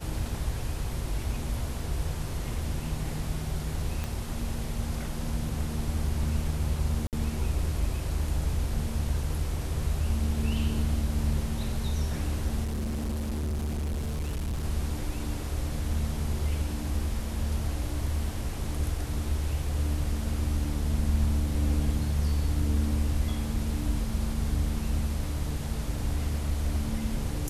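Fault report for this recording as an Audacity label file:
4.040000	4.040000	click −19 dBFS
7.070000	7.130000	drop-out 58 ms
12.630000	14.650000	clipping −27.5 dBFS

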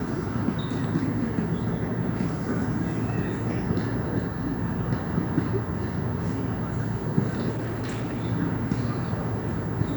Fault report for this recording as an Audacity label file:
7.510000	8.250000	clipping −26.5 dBFS

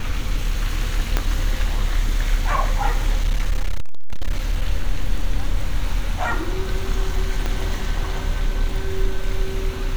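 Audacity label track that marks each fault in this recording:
1.170000	1.170000	click −5 dBFS
3.210000	4.650000	clipping −14 dBFS
7.460000	7.460000	click −11 dBFS

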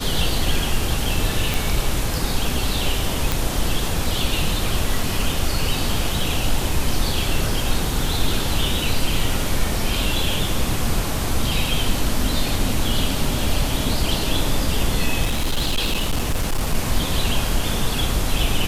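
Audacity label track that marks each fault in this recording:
1.540000	1.540000	click
3.320000	3.320000	click
15.230000	16.750000	clipping −16 dBFS

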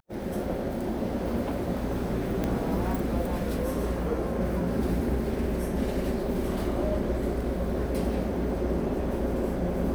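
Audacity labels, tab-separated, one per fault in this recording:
2.440000	2.440000	click −15 dBFS

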